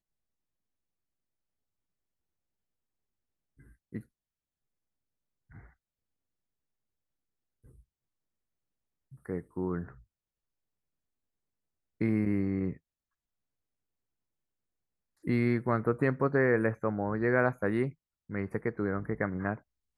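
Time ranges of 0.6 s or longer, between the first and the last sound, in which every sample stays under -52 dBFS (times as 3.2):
4.02–5.51
5.69–7.65
7.8–9.12
10.02–12
12.77–15.24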